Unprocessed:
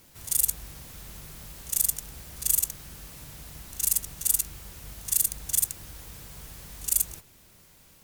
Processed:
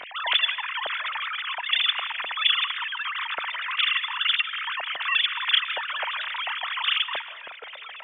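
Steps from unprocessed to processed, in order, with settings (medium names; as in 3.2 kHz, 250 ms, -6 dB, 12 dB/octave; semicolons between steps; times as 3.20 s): formants replaced by sine waves; compression 1.5:1, threshold -31 dBFS, peak gain reduction 5.5 dB; reverberation RT60 0.90 s, pre-delay 115 ms, DRR 16 dB; trim +6.5 dB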